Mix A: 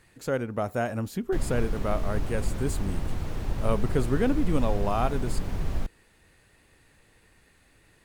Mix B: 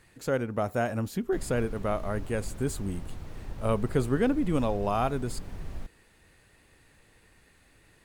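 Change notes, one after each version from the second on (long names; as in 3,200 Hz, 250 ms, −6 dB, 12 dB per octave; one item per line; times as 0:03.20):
background −9.5 dB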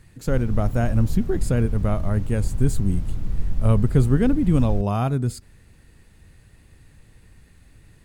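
background: entry −1.05 s
master: add bass and treble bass +14 dB, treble +3 dB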